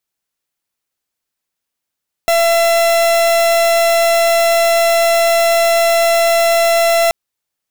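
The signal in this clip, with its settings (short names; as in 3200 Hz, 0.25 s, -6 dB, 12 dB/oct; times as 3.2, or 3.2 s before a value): pulse 673 Hz, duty 43% -12 dBFS 4.83 s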